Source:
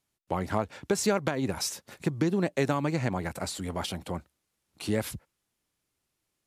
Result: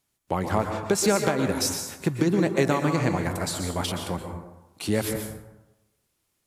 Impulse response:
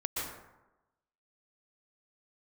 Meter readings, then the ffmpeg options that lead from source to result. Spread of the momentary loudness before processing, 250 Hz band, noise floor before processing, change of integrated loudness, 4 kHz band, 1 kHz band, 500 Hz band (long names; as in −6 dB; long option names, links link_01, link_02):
10 LU, +4.5 dB, −81 dBFS, +5.0 dB, +5.0 dB, +5.0 dB, +5.0 dB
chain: -filter_complex "[0:a]asplit=2[link_01][link_02];[1:a]atrim=start_sample=2205,highshelf=frequency=6600:gain=9[link_03];[link_02][link_03]afir=irnorm=-1:irlink=0,volume=-5dB[link_04];[link_01][link_04]amix=inputs=2:normalize=0"